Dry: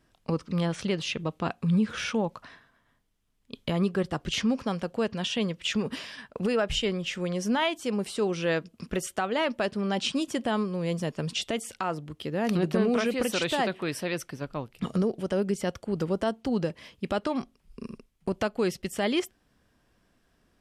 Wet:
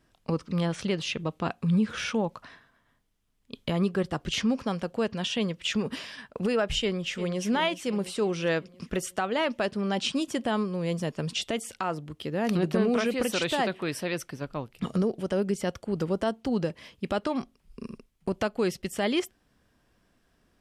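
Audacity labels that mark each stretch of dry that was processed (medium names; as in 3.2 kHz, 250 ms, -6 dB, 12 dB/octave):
6.820000	7.430000	echo throw 350 ms, feedback 60%, level -12 dB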